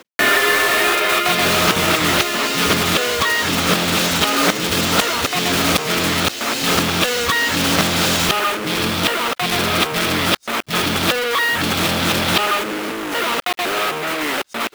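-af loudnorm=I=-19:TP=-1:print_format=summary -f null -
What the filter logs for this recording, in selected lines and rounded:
Input Integrated:    -16.9 LUFS
Input True Peak:      -0.9 dBTP
Input LRA:             3.7 LU
Input Threshold:     -26.9 LUFS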